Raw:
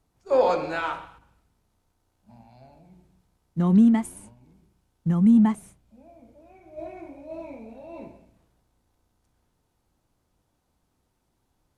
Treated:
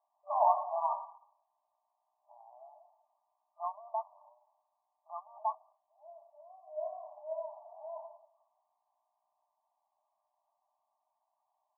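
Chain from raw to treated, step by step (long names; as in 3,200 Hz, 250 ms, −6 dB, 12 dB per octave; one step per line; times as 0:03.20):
brick-wall band-pass 590–1,200 Hz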